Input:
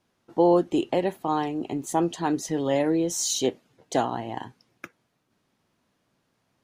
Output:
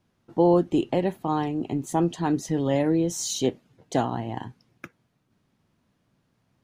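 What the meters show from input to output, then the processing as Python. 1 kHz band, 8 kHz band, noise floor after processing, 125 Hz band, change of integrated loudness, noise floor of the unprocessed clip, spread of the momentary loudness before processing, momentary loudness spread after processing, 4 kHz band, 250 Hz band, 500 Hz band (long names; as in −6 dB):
−1.5 dB, −3.5 dB, −72 dBFS, +6.0 dB, +0.5 dB, −74 dBFS, 12 LU, 11 LU, −2.5 dB, +1.5 dB, −0.5 dB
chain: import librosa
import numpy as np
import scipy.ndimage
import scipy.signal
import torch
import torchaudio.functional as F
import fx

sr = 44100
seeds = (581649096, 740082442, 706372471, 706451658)

y = fx.bass_treble(x, sr, bass_db=9, treble_db=-2)
y = y * 10.0 ** (-1.5 / 20.0)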